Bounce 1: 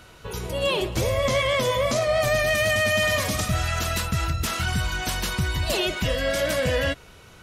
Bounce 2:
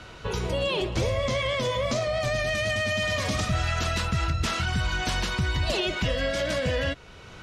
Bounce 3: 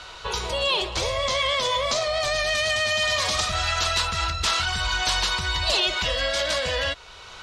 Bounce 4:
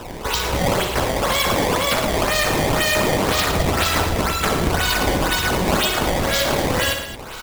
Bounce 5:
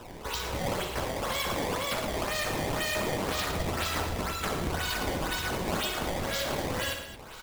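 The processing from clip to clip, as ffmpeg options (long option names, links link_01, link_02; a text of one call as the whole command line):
ffmpeg -i in.wav -filter_complex "[0:a]lowpass=5700,alimiter=limit=-21dB:level=0:latency=1:release=471,acrossover=split=360|3000[link_01][link_02][link_03];[link_02]acompressor=threshold=-31dB:ratio=6[link_04];[link_01][link_04][link_03]amix=inputs=3:normalize=0,volume=4.5dB" out.wav
ffmpeg -i in.wav -af "equalizer=frequency=125:width_type=o:width=1:gain=-10,equalizer=frequency=250:width_type=o:width=1:gain=-10,equalizer=frequency=1000:width_type=o:width=1:gain=7,equalizer=frequency=4000:width_type=o:width=1:gain=9,equalizer=frequency=8000:width_type=o:width=1:gain=6" out.wav
ffmpeg -i in.wav -filter_complex "[0:a]acrossover=split=440|1300[link_01][link_02][link_03];[link_01]acompressor=threshold=-37dB:ratio=4[link_04];[link_02]acompressor=threshold=-38dB:ratio=4[link_05];[link_03]acompressor=threshold=-26dB:ratio=4[link_06];[link_04][link_05][link_06]amix=inputs=3:normalize=0,acrusher=samples=19:mix=1:aa=0.000001:lfo=1:lforange=30.4:lforate=2,aecho=1:1:60|111|221:0.376|0.335|0.224,volume=8dB" out.wav
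ffmpeg -i in.wav -af "flanger=delay=7.8:depth=7.4:regen=-67:speed=1.6:shape=triangular,volume=-7.5dB" out.wav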